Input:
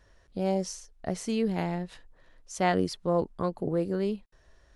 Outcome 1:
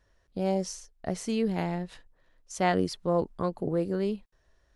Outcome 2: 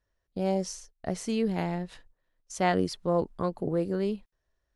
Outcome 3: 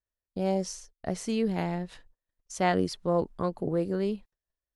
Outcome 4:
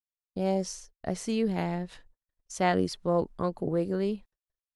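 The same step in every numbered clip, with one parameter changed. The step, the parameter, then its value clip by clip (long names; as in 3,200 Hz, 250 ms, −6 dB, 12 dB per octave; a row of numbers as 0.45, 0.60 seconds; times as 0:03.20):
noise gate, range: −7, −19, −35, −56 decibels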